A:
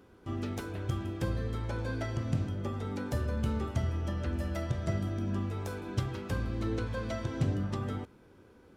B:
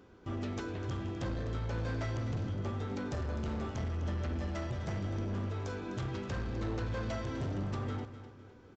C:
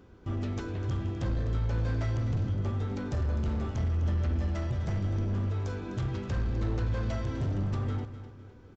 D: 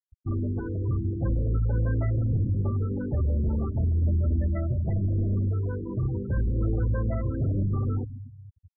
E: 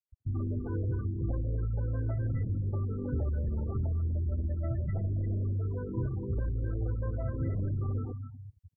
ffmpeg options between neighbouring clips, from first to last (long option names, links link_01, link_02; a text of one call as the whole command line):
ffmpeg -i in.wav -af "aresample=16000,asoftclip=type=hard:threshold=-33dB,aresample=44100,aecho=1:1:253|506|759|1012:0.237|0.0949|0.0379|0.0152" out.wav
ffmpeg -i in.wav -af "lowshelf=frequency=140:gain=10.5" out.wav
ffmpeg -i in.wav -af "lowpass=5500,afftfilt=real='re*gte(hypot(re,im),0.0282)':imag='im*gte(hypot(re,im),0.0282)':win_size=1024:overlap=0.75,volume=4.5dB" out.wav
ffmpeg -i in.wav -filter_complex "[0:a]acompressor=threshold=-28dB:ratio=6,acrossover=split=220|1600[link_01][link_02][link_03];[link_02]adelay=80[link_04];[link_03]adelay=330[link_05];[link_01][link_04][link_05]amix=inputs=3:normalize=0" out.wav